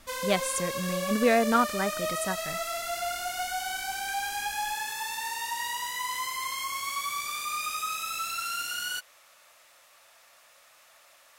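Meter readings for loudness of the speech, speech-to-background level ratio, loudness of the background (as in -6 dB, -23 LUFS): -28.0 LUFS, 3.5 dB, -31.5 LUFS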